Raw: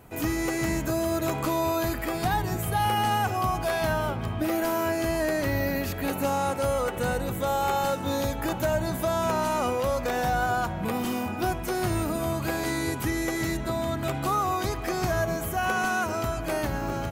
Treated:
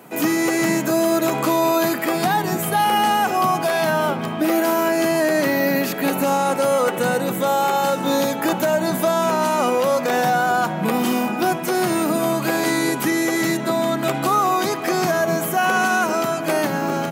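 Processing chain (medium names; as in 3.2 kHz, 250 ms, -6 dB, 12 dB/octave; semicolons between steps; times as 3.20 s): steep high-pass 150 Hz 48 dB/octave; peak limiter -18.5 dBFS, peak gain reduction 4.5 dB; trim +9 dB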